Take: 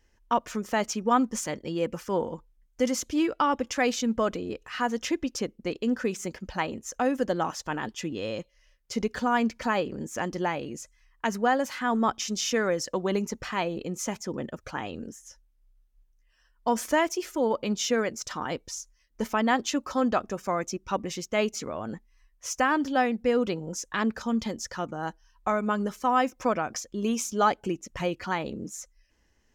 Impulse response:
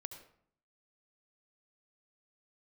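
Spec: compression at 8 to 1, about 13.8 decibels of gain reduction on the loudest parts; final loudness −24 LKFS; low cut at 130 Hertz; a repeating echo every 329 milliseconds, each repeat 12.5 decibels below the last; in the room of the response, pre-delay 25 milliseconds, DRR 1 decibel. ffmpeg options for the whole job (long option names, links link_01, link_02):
-filter_complex "[0:a]highpass=130,acompressor=threshold=-33dB:ratio=8,aecho=1:1:329|658|987:0.237|0.0569|0.0137,asplit=2[link_01][link_02];[1:a]atrim=start_sample=2205,adelay=25[link_03];[link_02][link_03]afir=irnorm=-1:irlink=0,volume=2.5dB[link_04];[link_01][link_04]amix=inputs=2:normalize=0,volume=11.5dB"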